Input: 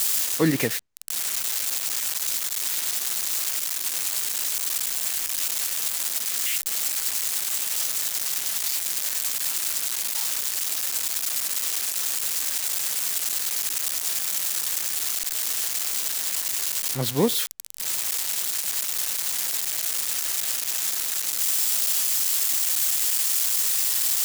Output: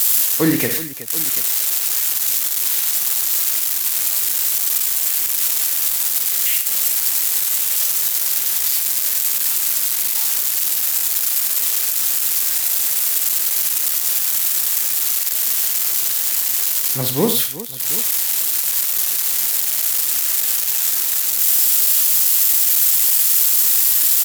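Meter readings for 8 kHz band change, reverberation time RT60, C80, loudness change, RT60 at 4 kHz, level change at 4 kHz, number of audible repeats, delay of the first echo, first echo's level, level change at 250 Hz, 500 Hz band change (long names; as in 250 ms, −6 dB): +6.5 dB, no reverb audible, no reverb audible, +8.0 dB, no reverb audible, +4.5 dB, 4, 47 ms, −8.5 dB, +5.0 dB, +4.0 dB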